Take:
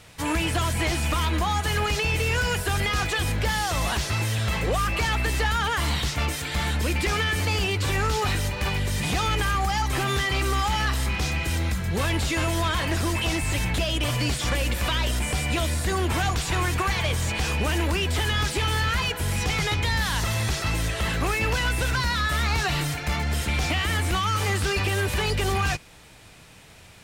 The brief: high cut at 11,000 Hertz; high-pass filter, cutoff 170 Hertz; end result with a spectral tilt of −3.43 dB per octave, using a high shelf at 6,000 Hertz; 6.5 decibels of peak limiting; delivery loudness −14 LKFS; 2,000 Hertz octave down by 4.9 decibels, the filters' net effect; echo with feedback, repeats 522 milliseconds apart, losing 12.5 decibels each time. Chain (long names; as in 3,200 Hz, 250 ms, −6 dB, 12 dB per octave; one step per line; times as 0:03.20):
high-pass filter 170 Hz
low-pass filter 11,000 Hz
parametric band 2,000 Hz −6 dB
high-shelf EQ 6,000 Hz −3 dB
brickwall limiter −23 dBFS
repeating echo 522 ms, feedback 24%, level −12.5 dB
level +17 dB